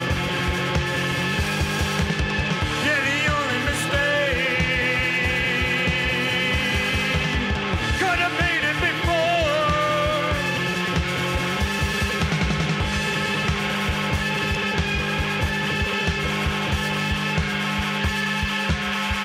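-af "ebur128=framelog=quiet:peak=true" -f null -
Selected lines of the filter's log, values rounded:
Integrated loudness:
  I:         -21.7 LUFS
  Threshold: -31.7 LUFS
Loudness range:
  LRA:         2.3 LU
  Threshold: -41.5 LUFS
  LRA low:   -22.6 LUFS
  LRA high:  -20.4 LUFS
True peak:
  Peak:       -9.7 dBFS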